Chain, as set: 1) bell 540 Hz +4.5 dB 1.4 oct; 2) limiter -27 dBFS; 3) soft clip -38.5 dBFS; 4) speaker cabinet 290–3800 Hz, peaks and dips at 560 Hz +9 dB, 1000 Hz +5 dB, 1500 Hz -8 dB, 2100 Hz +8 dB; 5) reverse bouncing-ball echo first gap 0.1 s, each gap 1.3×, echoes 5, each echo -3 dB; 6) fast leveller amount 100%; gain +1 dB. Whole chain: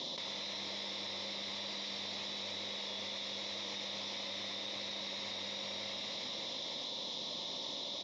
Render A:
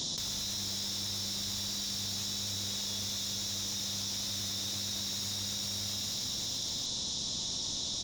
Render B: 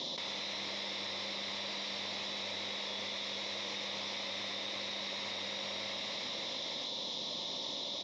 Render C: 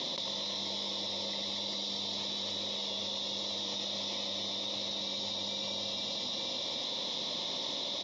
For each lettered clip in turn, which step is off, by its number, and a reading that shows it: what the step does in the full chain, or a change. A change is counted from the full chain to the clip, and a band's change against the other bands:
4, 8 kHz band +17.0 dB; 2, mean gain reduction 5.5 dB; 3, distortion -9 dB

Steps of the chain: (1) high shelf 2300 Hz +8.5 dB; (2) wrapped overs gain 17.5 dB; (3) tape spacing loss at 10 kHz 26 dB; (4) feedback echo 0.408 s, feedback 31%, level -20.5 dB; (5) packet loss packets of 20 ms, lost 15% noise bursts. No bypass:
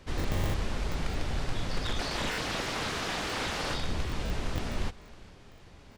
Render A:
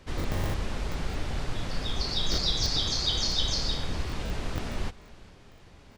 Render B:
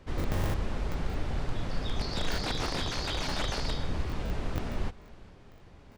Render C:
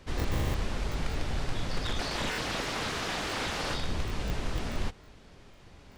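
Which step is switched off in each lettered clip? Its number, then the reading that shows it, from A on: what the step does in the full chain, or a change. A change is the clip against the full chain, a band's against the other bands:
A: 2, 4 kHz band +8.5 dB; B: 1, 2 kHz band -3.0 dB; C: 4, momentary loudness spread change -1 LU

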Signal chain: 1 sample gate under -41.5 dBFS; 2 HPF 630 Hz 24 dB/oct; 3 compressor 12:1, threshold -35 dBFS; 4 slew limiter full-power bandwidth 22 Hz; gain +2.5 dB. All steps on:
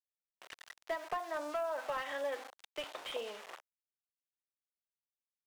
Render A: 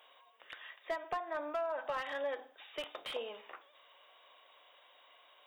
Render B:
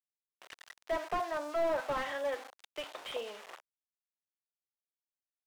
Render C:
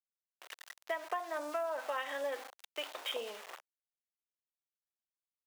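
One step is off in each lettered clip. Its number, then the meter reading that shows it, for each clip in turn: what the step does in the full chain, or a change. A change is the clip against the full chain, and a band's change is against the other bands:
1, distortion -21 dB; 3, mean gain reduction 2.5 dB; 4, distortion -12 dB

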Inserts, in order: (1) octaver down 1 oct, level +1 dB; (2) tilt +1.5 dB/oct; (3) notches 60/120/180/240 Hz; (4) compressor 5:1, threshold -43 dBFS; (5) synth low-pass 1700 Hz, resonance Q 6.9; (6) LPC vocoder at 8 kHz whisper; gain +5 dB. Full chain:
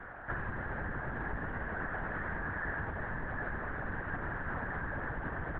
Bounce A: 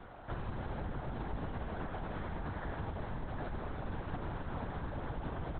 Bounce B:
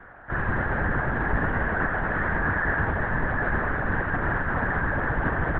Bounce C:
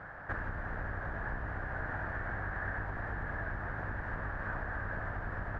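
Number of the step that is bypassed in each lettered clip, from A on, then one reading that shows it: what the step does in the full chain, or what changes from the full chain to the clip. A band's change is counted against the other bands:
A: 5, 2 kHz band -12.5 dB; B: 4, mean gain reduction 11.5 dB; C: 6, 250 Hz band -2.5 dB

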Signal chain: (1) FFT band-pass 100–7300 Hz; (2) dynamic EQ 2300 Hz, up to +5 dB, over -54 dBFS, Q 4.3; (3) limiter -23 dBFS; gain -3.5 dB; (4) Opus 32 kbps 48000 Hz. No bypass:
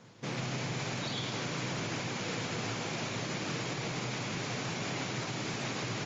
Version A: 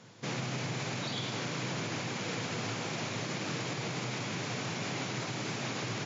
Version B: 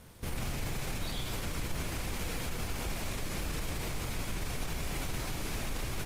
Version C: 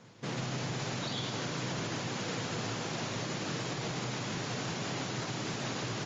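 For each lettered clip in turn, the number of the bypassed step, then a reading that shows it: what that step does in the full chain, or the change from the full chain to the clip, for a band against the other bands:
4, crest factor change -2.0 dB; 1, 125 Hz band +3.0 dB; 2, 2 kHz band -2.0 dB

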